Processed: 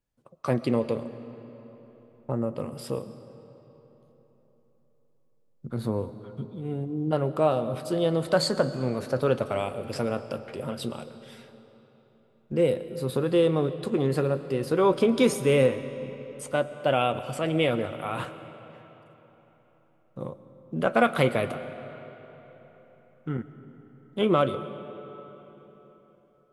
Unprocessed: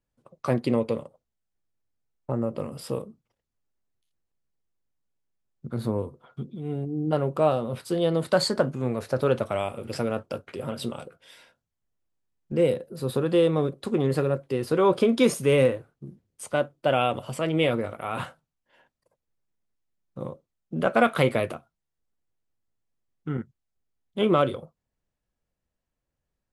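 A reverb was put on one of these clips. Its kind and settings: algorithmic reverb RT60 4 s, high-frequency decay 0.7×, pre-delay 70 ms, DRR 12.5 dB; trim -1 dB

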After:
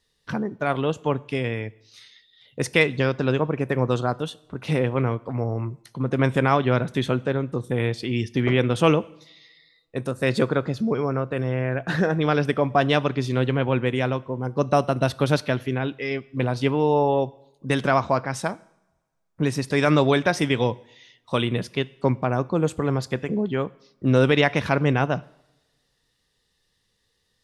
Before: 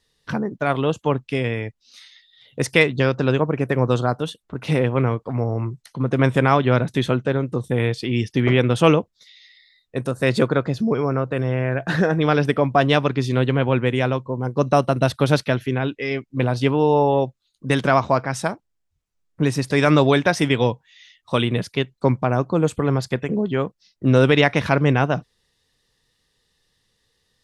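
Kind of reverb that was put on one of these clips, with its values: two-slope reverb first 0.72 s, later 2.1 s, from -23 dB, DRR 19 dB; trim -3 dB

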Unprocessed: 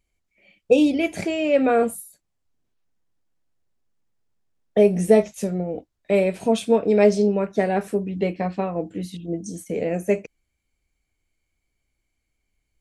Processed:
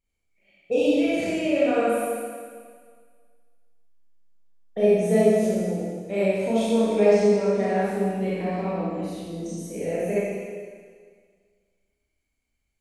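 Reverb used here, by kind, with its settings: Schroeder reverb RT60 1.8 s, combs from 28 ms, DRR -9.5 dB; trim -11.5 dB

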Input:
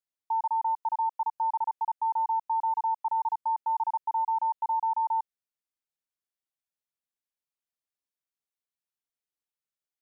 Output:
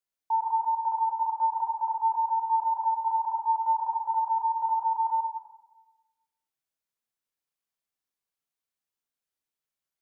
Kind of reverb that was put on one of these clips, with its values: plate-style reverb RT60 1.1 s, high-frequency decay 0.75×, DRR 0.5 dB

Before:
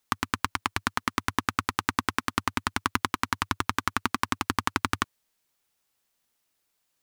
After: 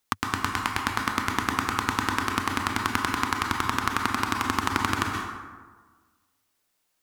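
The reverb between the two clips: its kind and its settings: plate-style reverb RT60 1.4 s, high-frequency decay 0.5×, pre-delay 110 ms, DRR 1 dB

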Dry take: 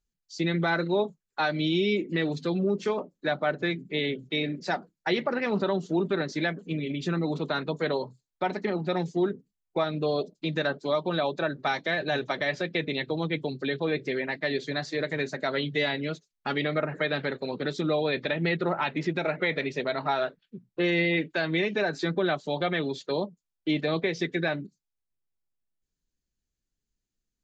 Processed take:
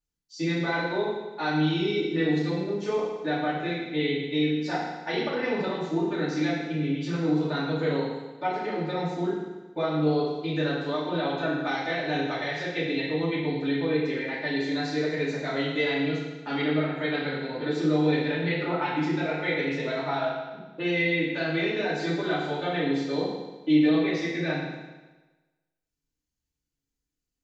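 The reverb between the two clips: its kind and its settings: FDN reverb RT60 1.2 s, low-frequency decay 0.95×, high-frequency decay 0.95×, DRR -8.5 dB; trim -9 dB

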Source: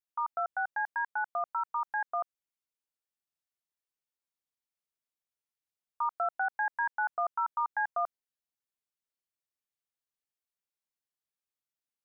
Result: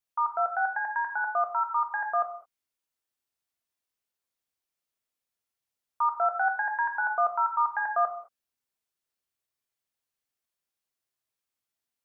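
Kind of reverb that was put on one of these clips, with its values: gated-style reverb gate 240 ms falling, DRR 3.5 dB; trim +3.5 dB

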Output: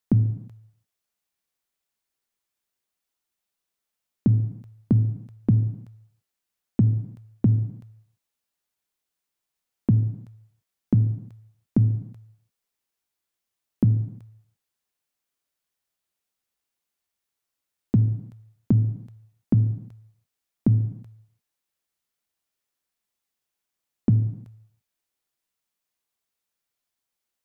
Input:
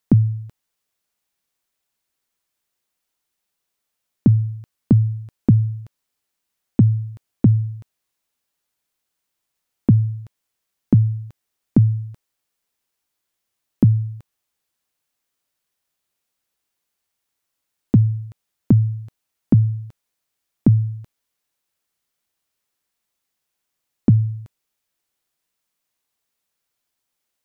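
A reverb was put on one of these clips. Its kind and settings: gated-style reverb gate 370 ms falling, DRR 10 dB; trim -6 dB

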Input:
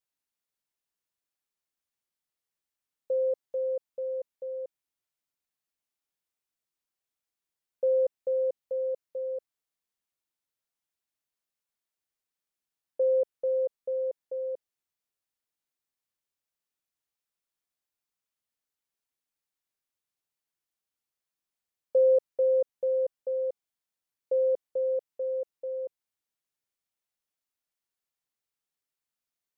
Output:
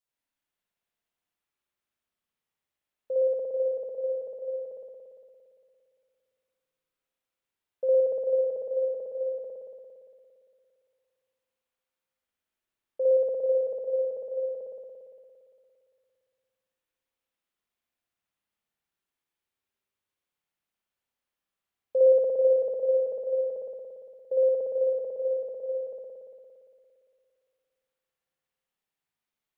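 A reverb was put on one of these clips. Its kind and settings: spring tank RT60 2.4 s, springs 57 ms, chirp 70 ms, DRR -7 dB; trim -3 dB

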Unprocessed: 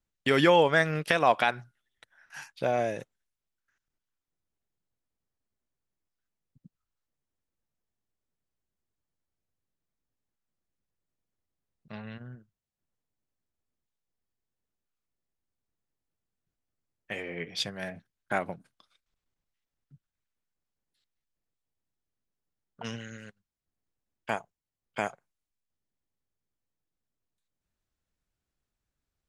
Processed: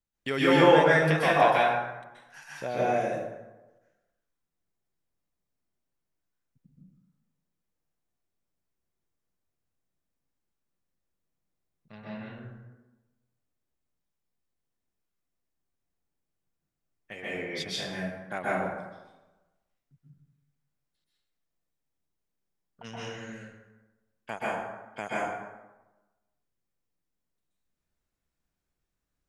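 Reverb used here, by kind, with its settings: plate-style reverb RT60 1.1 s, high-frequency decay 0.55×, pre-delay 115 ms, DRR -8 dB; trim -6.5 dB

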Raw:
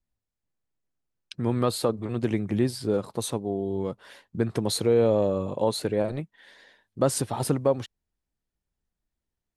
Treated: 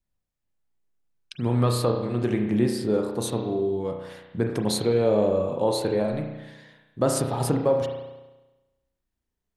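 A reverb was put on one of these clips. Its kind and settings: spring tank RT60 1.1 s, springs 33 ms, chirp 50 ms, DRR 2.5 dB

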